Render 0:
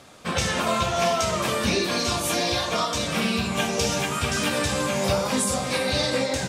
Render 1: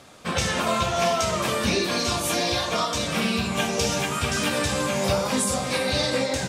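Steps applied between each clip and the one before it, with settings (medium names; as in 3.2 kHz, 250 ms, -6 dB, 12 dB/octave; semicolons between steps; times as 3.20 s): no audible change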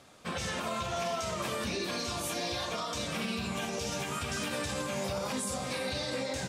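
peak limiter -17 dBFS, peak gain reduction 7.5 dB; trim -8 dB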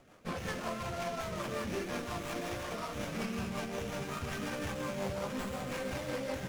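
rotary cabinet horn 5.5 Hz; feedback echo behind a high-pass 151 ms, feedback 70%, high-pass 3.1 kHz, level -7.5 dB; sliding maximum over 9 samples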